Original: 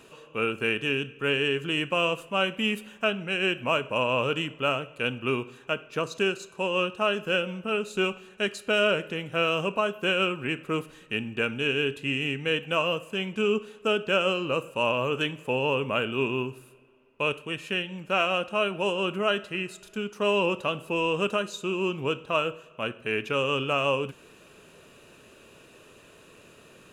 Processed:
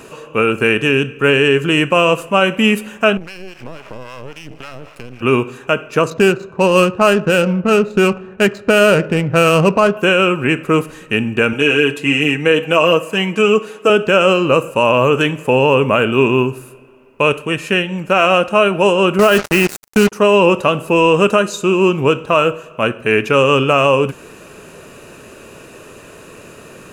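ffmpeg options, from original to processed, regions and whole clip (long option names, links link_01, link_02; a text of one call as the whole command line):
ffmpeg -i in.wav -filter_complex "[0:a]asettb=1/sr,asplit=3[link_01][link_02][link_03];[link_01]atrim=end=3.174[link_04];[link_02]atrim=start=3.17:end=5.21,asetpts=PTS-STARTPTS,afade=type=in:duration=0.004:curve=qsin,afade=type=out:start_time=2.036:duration=0.004:curve=qsin,aeval=exprs='max(val(0),0)':channel_layout=same,acompressor=threshold=-37dB:ratio=12:attack=3.2:release=140:knee=1:detection=peak,acrossover=split=720[link_05][link_06];[link_05]aeval=exprs='val(0)*(1-0.7/2+0.7/2*cos(2*PI*3.7*n/s))':channel_layout=same[link_07];[link_06]aeval=exprs='val(0)*(1-0.7/2-0.7/2*cos(2*PI*3.7*n/s))':channel_layout=same[link_08];[link_07][link_08]amix=inputs=2:normalize=0[link_09];[link_03]atrim=start=5.206[link_10];[link_04][link_09]acrossfade=duration=0.004:curve1=hsin:curve2=qsin[link_11];[link_11][link_10]acrossfade=duration=0.004:curve1=qsin:curve2=hsin,asettb=1/sr,asplit=3[link_12][link_13][link_14];[link_12]atrim=end=6.104[link_15];[link_13]atrim=start=6.1:end=9.97,asetpts=PTS-STARTPTS,afade=type=in:duration=0.004:curve=qsin,afade=type=out:start_time=3.866:duration=0.004:curve=qsin,equalizer=frequency=110:width_type=o:width=1.6:gain=8,adynamicsmooth=sensitivity=4.5:basefreq=1600[link_16];[link_14]atrim=start=9.966[link_17];[link_15][link_16]acrossfade=duration=0.004:curve1=hsin:curve2=qsin[link_18];[link_18][link_17]acrossfade=duration=0.004:curve1=qsin:curve2=hsin,asettb=1/sr,asplit=3[link_19][link_20][link_21];[link_19]atrim=end=11.534[link_22];[link_20]atrim=start=11.53:end=13.9,asetpts=PTS-STARTPTS,afade=type=in:duration=0.004:curve=qsin,afade=type=out:start_time=2.366:duration=0.004:curve=qsin,highpass=210,aecho=1:1:6.3:0.63,atrim=end_sample=104517[link_23];[link_21]atrim=start=13.896[link_24];[link_22][link_23]acrossfade=duration=0.004:curve1=hsin:curve2=qsin[link_25];[link_25][link_24]acrossfade=duration=0.004:curve1=qsin:curve2=hsin,asettb=1/sr,asplit=3[link_26][link_27][link_28];[link_26]atrim=end=19.194[link_29];[link_27]atrim=start=19.19:end=20.12,asetpts=PTS-STARTPTS,afade=type=in:duration=0.004:curve=qsin,afade=type=out:start_time=0.926:duration=0.004:curve=qsin,acontrast=44,acrusher=bits=4:mix=0:aa=0.5[link_30];[link_28]atrim=start=20.116[link_31];[link_29][link_30]acrossfade=duration=0.004:curve1=hsin:curve2=qsin[link_32];[link_32][link_31]acrossfade=duration=0.004:curve1=qsin:curve2=hsin,equalizer=frequency=3400:width_type=o:width=0.68:gain=-7.5,alimiter=level_in=16.5dB:limit=-1dB:release=50:level=0:latency=1,volume=-1dB" out.wav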